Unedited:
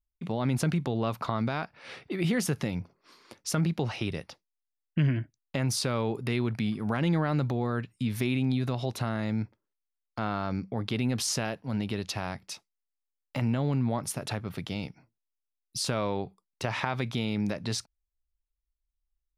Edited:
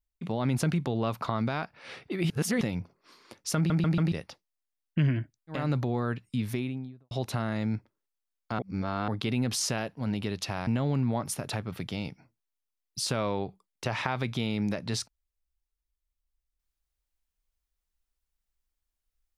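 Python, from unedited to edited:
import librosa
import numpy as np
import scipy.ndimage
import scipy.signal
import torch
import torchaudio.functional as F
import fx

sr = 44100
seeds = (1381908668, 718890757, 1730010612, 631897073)

y = fx.studio_fade_out(x, sr, start_s=7.97, length_s=0.81)
y = fx.edit(y, sr, fx.reverse_span(start_s=2.3, length_s=0.31),
    fx.stutter_over(start_s=3.56, slice_s=0.14, count=4),
    fx.cut(start_s=5.59, length_s=1.67, crossfade_s=0.24),
    fx.reverse_span(start_s=10.26, length_s=0.49),
    fx.cut(start_s=12.34, length_s=1.11), tone=tone)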